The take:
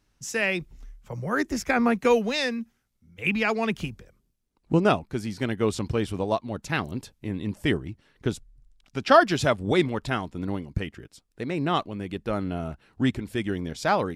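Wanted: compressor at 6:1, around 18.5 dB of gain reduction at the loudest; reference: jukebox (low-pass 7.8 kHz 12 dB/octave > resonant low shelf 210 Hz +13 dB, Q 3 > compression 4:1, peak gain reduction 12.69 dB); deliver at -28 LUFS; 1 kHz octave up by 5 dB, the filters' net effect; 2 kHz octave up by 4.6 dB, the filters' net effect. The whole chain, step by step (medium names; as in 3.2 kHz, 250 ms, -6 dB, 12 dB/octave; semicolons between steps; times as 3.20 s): peaking EQ 1 kHz +6.5 dB; peaking EQ 2 kHz +4 dB; compression 6:1, threshold -27 dBFS; low-pass 7.8 kHz 12 dB/octave; resonant low shelf 210 Hz +13 dB, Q 3; compression 4:1, threshold -23 dBFS; trim +1 dB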